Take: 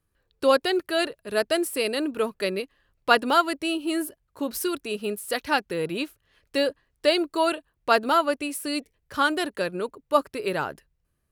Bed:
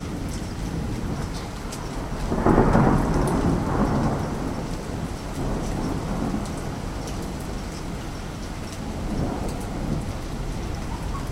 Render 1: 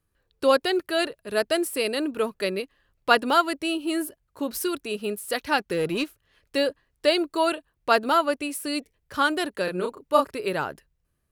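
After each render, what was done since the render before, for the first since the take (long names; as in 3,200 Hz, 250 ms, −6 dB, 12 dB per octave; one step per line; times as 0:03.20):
0:05.59–0:06.04: leveller curve on the samples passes 1
0:09.64–0:10.34: double-tracking delay 33 ms −3 dB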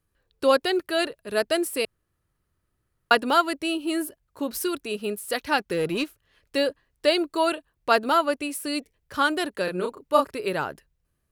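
0:01.85–0:03.11: fill with room tone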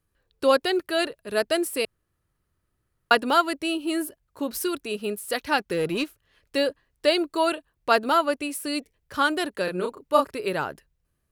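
no processing that can be heard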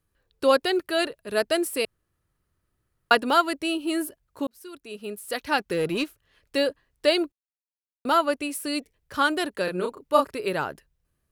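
0:04.47–0:05.64: fade in
0:07.32–0:08.05: silence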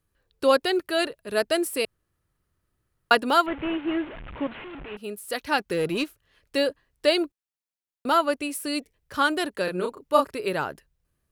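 0:03.46–0:04.97: linear delta modulator 16 kbit/s, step −33 dBFS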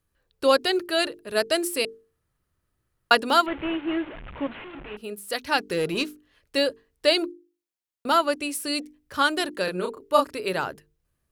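mains-hum notches 50/100/150/200/250/300/350/400/450 Hz
dynamic equaliser 5,500 Hz, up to +5 dB, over −42 dBFS, Q 0.72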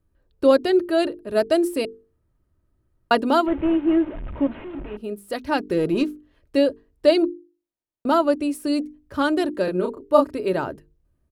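tilt shelving filter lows +8.5 dB
comb filter 3.2 ms, depth 30%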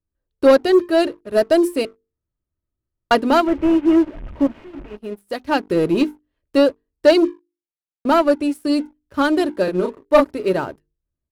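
leveller curve on the samples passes 2
expander for the loud parts 1.5 to 1, over −29 dBFS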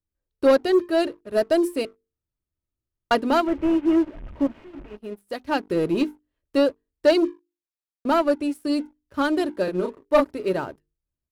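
level −5 dB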